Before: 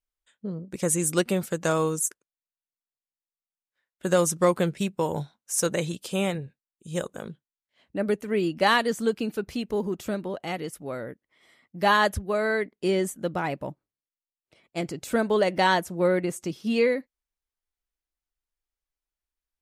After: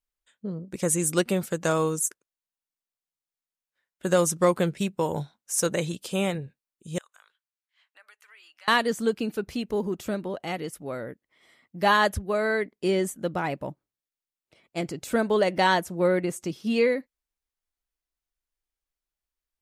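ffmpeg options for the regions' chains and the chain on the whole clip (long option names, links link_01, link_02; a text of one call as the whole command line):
ffmpeg -i in.wav -filter_complex "[0:a]asettb=1/sr,asplit=3[link_01][link_02][link_03];[link_01]atrim=end=6.984[link_04];[link_02]atrim=start=6.98:end=8.68,asetpts=PTS-STARTPTS,afade=type=in:duration=0.004:curve=qsin,afade=type=out:start_time=1.696:duration=0.004:curve=qsin,highpass=frequency=1100:width=0.5412,highpass=frequency=1100:width=1.3066,highshelf=frequency=5300:gain=-6.5,acompressor=threshold=-54dB:ratio=3:attack=3.2:release=140:knee=1:detection=peak[link_05];[link_03]atrim=start=8.676[link_06];[link_04][link_05]acrossfade=duration=0.004:curve1=hsin:curve2=qsin[link_07];[link_07][link_06]acrossfade=duration=0.004:curve1=qsin:curve2=hsin" out.wav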